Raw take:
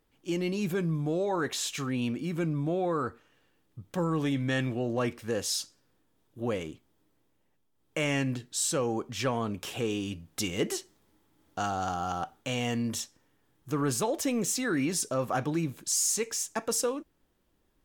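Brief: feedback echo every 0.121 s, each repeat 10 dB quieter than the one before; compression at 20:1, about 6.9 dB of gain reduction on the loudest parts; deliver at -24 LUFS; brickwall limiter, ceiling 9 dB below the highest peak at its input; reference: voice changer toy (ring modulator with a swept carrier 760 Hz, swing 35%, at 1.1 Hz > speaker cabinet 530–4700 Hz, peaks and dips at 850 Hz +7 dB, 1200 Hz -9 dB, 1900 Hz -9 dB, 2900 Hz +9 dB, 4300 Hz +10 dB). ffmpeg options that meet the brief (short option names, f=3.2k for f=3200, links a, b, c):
-af "acompressor=threshold=-31dB:ratio=20,alimiter=level_in=5.5dB:limit=-24dB:level=0:latency=1,volume=-5.5dB,aecho=1:1:121|242|363|484:0.316|0.101|0.0324|0.0104,aeval=exprs='val(0)*sin(2*PI*760*n/s+760*0.35/1.1*sin(2*PI*1.1*n/s))':c=same,highpass=530,equalizer=f=850:t=q:w=4:g=7,equalizer=f=1.2k:t=q:w=4:g=-9,equalizer=f=1.9k:t=q:w=4:g=-9,equalizer=f=2.9k:t=q:w=4:g=9,equalizer=f=4.3k:t=q:w=4:g=10,lowpass=f=4.7k:w=0.5412,lowpass=f=4.7k:w=1.3066,volume=17dB"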